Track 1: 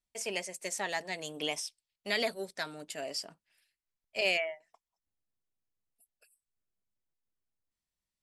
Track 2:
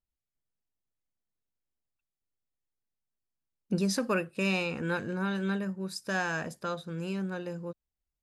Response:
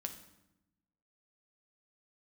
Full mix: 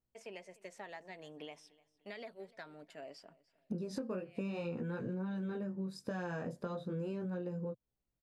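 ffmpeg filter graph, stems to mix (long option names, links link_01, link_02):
-filter_complex "[0:a]highshelf=frequency=4900:gain=-11,acompressor=threshold=-35dB:ratio=6,volume=-7.5dB,asplit=2[link_01][link_02];[link_02]volume=-22dB[link_03];[1:a]equalizer=frequency=125:width_type=o:width=1:gain=12,equalizer=frequency=250:width_type=o:width=1:gain=8,equalizer=frequency=500:width_type=o:width=1:gain=10,equalizer=frequency=1000:width_type=o:width=1:gain=3,equalizer=frequency=4000:width_type=o:width=1:gain=3,equalizer=frequency=8000:width_type=o:width=1:gain=4,flanger=delay=16:depth=7:speed=0.39,acompressor=threshold=-37dB:ratio=2,volume=0dB,asplit=2[link_04][link_05];[link_05]apad=whole_len=362585[link_06];[link_01][link_06]sidechaincompress=threshold=-48dB:ratio=8:attack=16:release=288[link_07];[link_03]aecho=0:1:297|594|891|1188|1485:1|0.37|0.137|0.0507|0.0187[link_08];[link_07][link_04][link_08]amix=inputs=3:normalize=0,equalizer=frequency=8500:width=0.42:gain=-9.5,acompressor=threshold=-36dB:ratio=6"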